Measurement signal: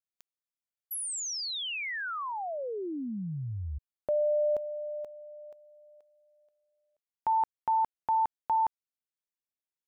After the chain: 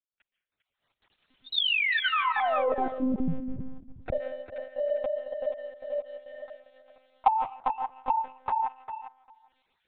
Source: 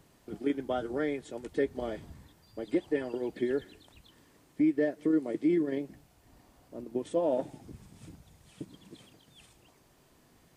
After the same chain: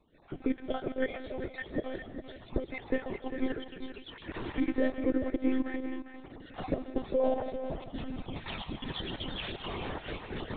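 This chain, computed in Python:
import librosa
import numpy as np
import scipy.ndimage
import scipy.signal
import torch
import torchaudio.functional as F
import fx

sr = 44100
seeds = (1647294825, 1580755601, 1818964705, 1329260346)

p1 = fx.spec_dropout(x, sr, seeds[0], share_pct=31)
p2 = fx.recorder_agc(p1, sr, target_db=-24.0, rise_db_per_s=33.0, max_gain_db=28)
p3 = scipy.signal.sosfilt(scipy.signal.butter(4, 110.0, 'highpass', fs=sr, output='sos'), p2)
p4 = fx.level_steps(p3, sr, step_db=10)
p5 = p4 + fx.echo_feedback(p4, sr, ms=398, feedback_pct=16, wet_db=-9.0, dry=0)
p6 = fx.rev_freeverb(p5, sr, rt60_s=0.48, hf_ratio=0.65, predelay_ms=110, drr_db=11.5)
p7 = np.sign(p6) * np.maximum(np.abs(p6) - 10.0 ** (-47.5 / 20.0), 0.0)
p8 = p6 + (p7 * librosa.db_to_amplitude(-4.0))
y = fx.lpc_monotone(p8, sr, seeds[1], pitch_hz=260.0, order=16)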